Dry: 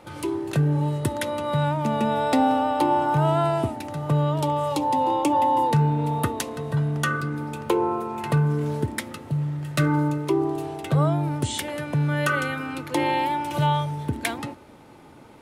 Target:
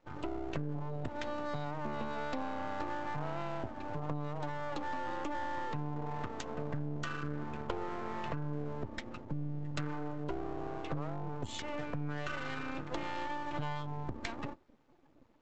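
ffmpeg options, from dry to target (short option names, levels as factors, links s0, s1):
-af "afftdn=nr=18:nf=-34,acompressor=threshold=0.0355:ratio=16,aresample=16000,aeval=exprs='max(val(0),0)':c=same,aresample=44100,volume=0.841"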